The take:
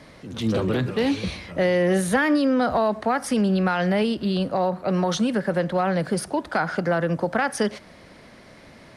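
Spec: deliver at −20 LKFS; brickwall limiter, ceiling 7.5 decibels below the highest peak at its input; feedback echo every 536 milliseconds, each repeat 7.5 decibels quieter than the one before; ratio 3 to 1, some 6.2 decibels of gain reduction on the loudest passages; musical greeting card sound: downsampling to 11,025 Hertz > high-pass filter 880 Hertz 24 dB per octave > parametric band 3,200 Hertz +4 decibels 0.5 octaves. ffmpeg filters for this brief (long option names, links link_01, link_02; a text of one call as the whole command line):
ffmpeg -i in.wav -af "acompressor=threshold=-25dB:ratio=3,alimiter=limit=-22dB:level=0:latency=1,aecho=1:1:536|1072|1608|2144|2680:0.422|0.177|0.0744|0.0312|0.0131,aresample=11025,aresample=44100,highpass=frequency=880:width=0.5412,highpass=frequency=880:width=1.3066,equalizer=frequency=3200:width_type=o:width=0.5:gain=4,volume=17dB" out.wav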